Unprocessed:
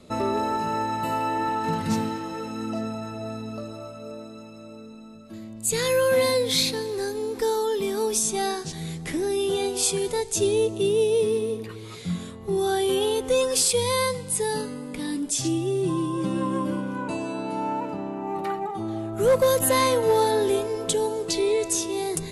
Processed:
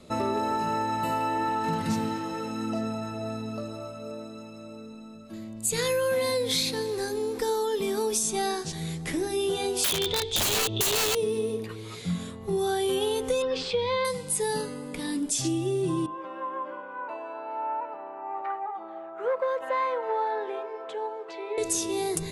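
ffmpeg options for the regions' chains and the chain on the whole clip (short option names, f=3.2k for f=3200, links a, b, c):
-filter_complex "[0:a]asettb=1/sr,asplit=3[a][b][c];[a]atrim=end=9.844[d];[b]atrim=start=9.84:end=11.15,asetpts=PTS-STARTPTS,afade=t=in:d=0.004:c=qsin,afade=t=out:st=1.306:d=0.004:c=qsin,lowpass=f=3.5k:t=q:w=11,equalizer=f=95:w=1.9:g=12.5,aeval=exprs='(mod(5.62*val(0)+1,2)-1)/5.62':c=same[e];[c]atrim=start=11.146[f];[d][e]acrossfade=d=0.004:c1=hsin:c2=qsin[g];[g][f]acrossfade=d=0.004:c1=qsin:c2=hsin,asettb=1/sr,asplit=3[h][i][j];[h]atrim=end=13.424[k];[i]atrim=start=13.42:end=14.05,asetpts=PTS-STARTPTS,afade=t=in:d=0.004:c=qsin,afade=t=out:st=0.626:d=0.004:c=qsin,lowpass=f=3.7k:w=0.5412,lowpass=f=3.7k:w=1.3066,asplit=2[l][m];[m]adelay=19,volume=-13dB[n];[l][n]amix=inputs=2:normalize=0,atrim=end_sample=27783[o];[j]atrim=start=14.046[p];[k][o]acrossfade=d=0.004:c1=hsin:c2=qsin[q];[q][p]acrossfade=d=0.004:c1=qsin:c2=hsin,asettb=1/sr,asplit=3[r][s][t];[r]atrim=end=16.064[u];[s]atrim=start=16.06:end=21.58,asetpts=PTS-STARTPTS,afade=t=in:d=0.004:c=qsin,afade=t=out:st=5.516:d=0.004:c=qsin,highpass=340,lowpass=4.7k,acrossover=split=520 2100:gain=0.1 1 0.0708[v][w][x];[v][w][x]amix=inputs=3:normalize=0[y];[t]atrim=start=21.576[z];[u][y]acrossfade=d=0.004:c1=hsin:c2=qsin[aa];[aa][z]acrossfade=d=0.004:c1=qsin:c2=hsin,bandreject=f=50:t=h:w=6,bandreject=f=100:t=h:w=6,bandreject=f=150:t=h:w=6,bandreject=f=200:t=h:w=6,bandreject=f=250:t=h:w=6,bandreject=f=300:t=h:w=6,bandreject=f=350:t=h:w=6,bandreject=f=400:t=h:w=6,bandreject=f=450:t=h:w=6,acompressor=threshold=-23dB:ratio=6"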